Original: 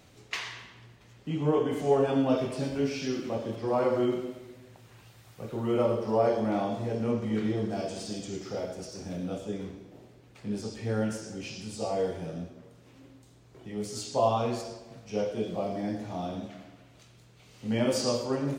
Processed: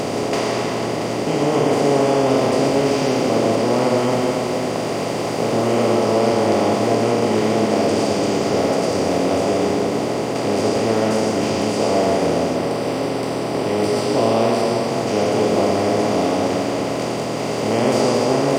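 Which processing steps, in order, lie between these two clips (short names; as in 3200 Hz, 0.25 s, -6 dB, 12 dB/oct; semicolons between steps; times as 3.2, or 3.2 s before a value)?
per-bin compression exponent 0.2; 12.56–14.88 notch 6700 Hz, Q 5.6; reverb RT60 0.60 s, pre-delay 0.112 s, DRR 6 dB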